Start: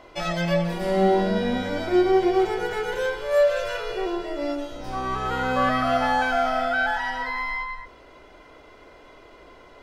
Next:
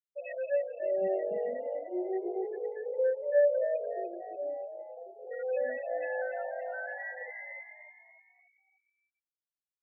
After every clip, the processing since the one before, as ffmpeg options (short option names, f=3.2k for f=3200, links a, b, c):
-filter_complex "[0:a]asplit=3[a][b][c];[a]bandpass=f=530:t=q:w=8,volume=0dB[d];[b]bandpass=f=1.84k:t=q:w=8,volume=-6dB[e];[c]bandpass=f=2.48k:t=q:w=8,volume=-9dB[f];[d][e][f]amix=inputs=3:normalize=0,afftfilt=real='re*gte(hypot(re,im),0.0447)':imag='im*gte(hypot(re,im),0.0447)':win_size=1024:overlap=0.75,asplit=6[g][h][i][j][k][l];[h]adelay=293,afreqshift=53,volume=-9dB[m];[i]adelay=586,afreqshift=106,volume=-15.9dB[n];[j]adelay=879,afreqshift=159,volume=-22.9dB[o];[k]adelay=1172,afreqshift=212,volume=-29.8dB[p];[l]adelay=1465,afreqshift=265,volume=-36.7dB[q];[g][m][n][o][p][q]amix=inputs=6:normalize=0"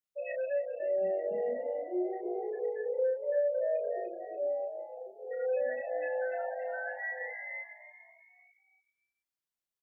-filter_complex "[0:a]acompressor=threshold=-31dB:ratio=4,asplit=2[a][b];[b]adelay=33,volume=-3.5dB[c];[a][c]amix=inputs=2:normalize=0"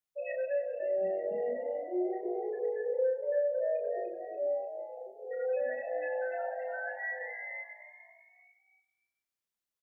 -af "aecho=1:1:97|194|291|388|485:0.178|0.0942|0.05|0.0265|0.014"